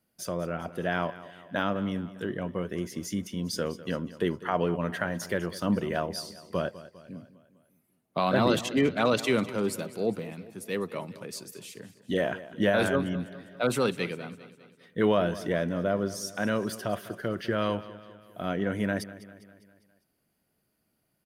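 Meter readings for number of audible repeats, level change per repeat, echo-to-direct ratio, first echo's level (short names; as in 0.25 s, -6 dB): 4, -5.5 dB, -15.0 dB, -16.5 dB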